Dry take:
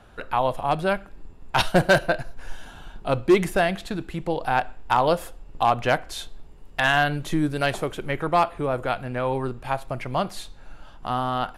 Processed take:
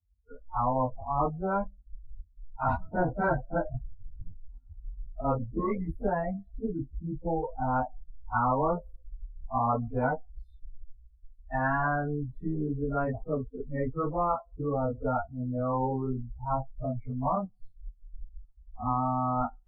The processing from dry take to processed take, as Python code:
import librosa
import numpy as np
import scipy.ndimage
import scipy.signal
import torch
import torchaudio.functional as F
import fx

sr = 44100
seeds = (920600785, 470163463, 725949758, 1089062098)

y = fx.bin_expand(x, sr, power=3.0)
y = scipy.signal.sosfilt(scipy.signal.ellip(4, 1.0, 70, 900.0, 'lowpass', fs=sr, output='sos'), y)
y = fx.stretch_vocoder_free(y, sr, factor=1.7)
y = fx.spectral_comp(y, sr, ratio=10.0)